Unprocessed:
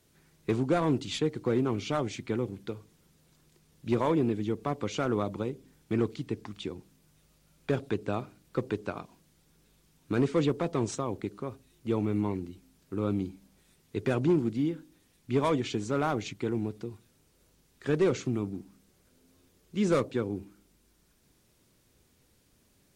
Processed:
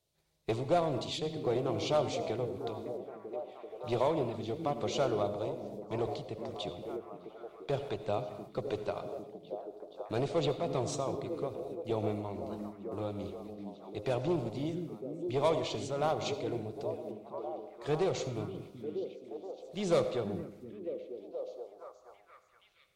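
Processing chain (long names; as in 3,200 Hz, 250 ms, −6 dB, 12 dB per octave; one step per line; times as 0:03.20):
one-sided soft clipper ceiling −18.5 dBFS
noise gate −60 dBFS, range −11 dB
graphic EQ with 15 bands 250 Hz −11 dB, 630 Hz +8 dB, 1,600 Hz −7 dB, 4,000 Hz +6 dB
echo through a band-pass that steps 474 ms, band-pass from 220 Hz, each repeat 0.7 octaves, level −3 dB
convolution reverb, pre-delay 69 ms, DRR 10 dB
amplitude modulation by smooth noise, depth 55%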